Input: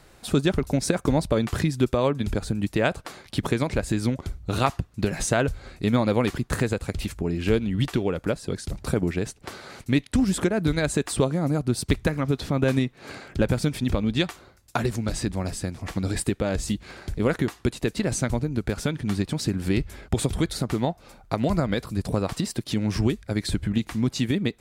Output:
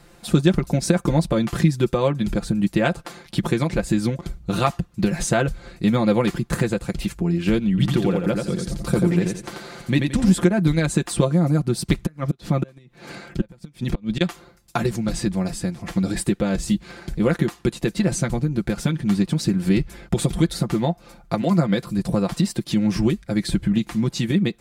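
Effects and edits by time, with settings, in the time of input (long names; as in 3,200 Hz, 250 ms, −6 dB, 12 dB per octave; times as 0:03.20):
0:07.69–0:10.32: repeating echo 87 ms, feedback 30%, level −4 dB
0:12.03–0:14.21: gate with flip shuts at −13 dBFS, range −28 dB
0:21.41–0:21.85: high-pass filter 200 Hz → 70 Hz 24 dB per octave
whole clip: parametric band 200 Hz +5 dB 0.93 octaves; comb filter 5.8 ms, depth 68%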